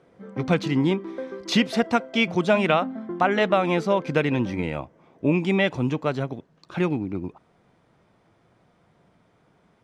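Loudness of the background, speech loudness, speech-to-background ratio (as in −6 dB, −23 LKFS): −36.0 LKFS, −24.0 LKFS, 12.0 dB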